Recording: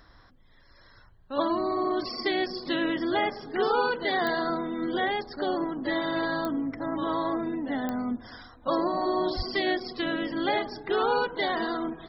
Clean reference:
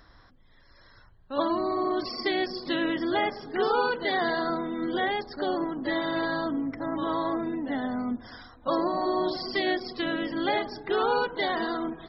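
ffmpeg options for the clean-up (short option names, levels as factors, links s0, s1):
-filter_complex "[0:a]adeclick=t=4,asplit=3[s0][s1][s2];[s0]afade=t=out:st=9.36:d=0.02[s3];[s1]highpass=f=140:w=0.5412,highpass=f=140:w=1.3066,afade=t=in:st=9.36:d=0.02,afade=t=out:st=9.48:d=0.02[s4];[s2]afade=t=in:st=9.48:d=0.02[s5];[s3][s4][s5]amix=inputs=3:normalize=0"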